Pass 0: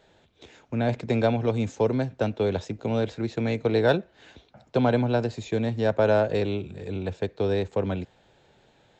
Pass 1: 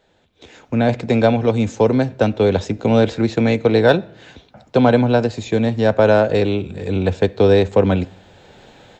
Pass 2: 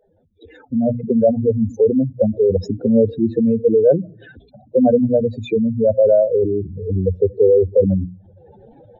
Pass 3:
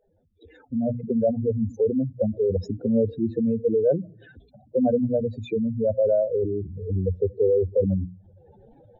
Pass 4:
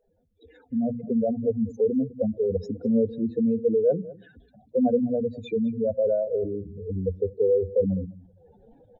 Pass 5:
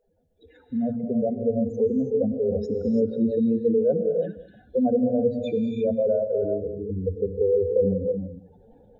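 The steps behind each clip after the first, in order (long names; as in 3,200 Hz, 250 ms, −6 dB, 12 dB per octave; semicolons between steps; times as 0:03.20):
automatic gain control gain up to 16.5 dB; convolution reverb RT60 0.75 s, pre-delay 4 ms, DRR 15.5 dB; level −1 dB
expanding power law on the bin magnitudes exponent 3.8; mains-hum notches 60/120/180/240/300 Hz; level +1 dB
low-shelf EQ 75 Hz +8.5 dB; level −8 dB
comb filter 4.2 ms, depth 45%; slap from a distant wall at 35 metres, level −19 dB; level −3 dB
reverb whose tail is shaped and stops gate 360 ms rising, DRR 3.5 dB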